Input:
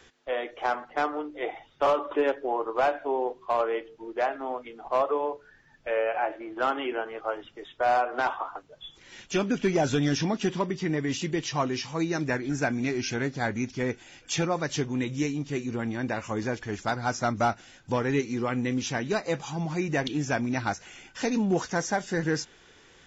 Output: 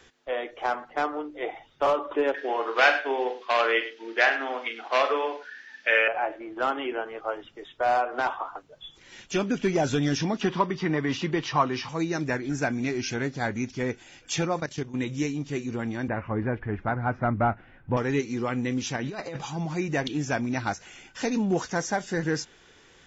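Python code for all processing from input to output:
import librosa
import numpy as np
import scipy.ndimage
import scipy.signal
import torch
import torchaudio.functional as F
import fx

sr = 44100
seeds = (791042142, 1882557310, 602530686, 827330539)

y = fx.chain(x, sr, fx.ellip_highpass(hz=210.0, order=4, stop_db=40),
    fx.band_shelf(hz=3000.0, db=16.0, octaves=2.4),
    fx.echo_multitap(ms=(44, 102), db=(-8.5, -14.0)), at=(2.34, 6.08))
y = fx.chain(y, sr, fx.lowpass(hz=5300.0, slope=24),
    fx.peak_eq(hz=1100.0, db=8.5, octaves=1.0),
    fx.band_squash(depth_pct=40), at=(10.41, 11.89))
y = fx.chain(y, sr, fx.peak_eq(hz=180.0, db=5.5, octaves=0.26),
    fx.level_steps(step_db=14), at=(14.6, 15.0))
y = fx.chain(y, sr, fx.lowpass(hz=2200.0, slope=24),
    fx.low_shelf(hz=120.0, db=11.0), at=(16.08, 17.97))
y = fx.chain(y, sr, fx.lowpass(hz=5500.0, slope=12),
    fx.over_compress(threshold_db=-33.0, ratio=-1.0), at=(18.96, 19.47))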